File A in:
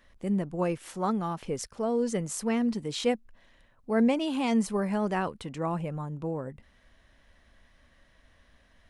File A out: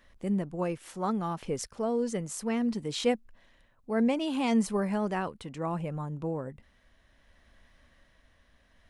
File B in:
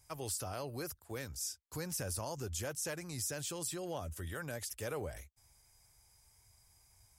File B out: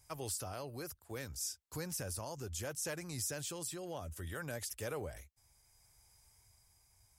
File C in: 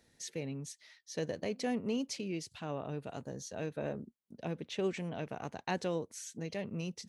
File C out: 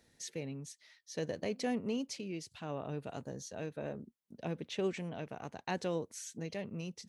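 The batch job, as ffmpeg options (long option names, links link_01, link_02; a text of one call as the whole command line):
ffmpeg -i in.wav -af "tremolo=f=0.65:d=0.3" out.wav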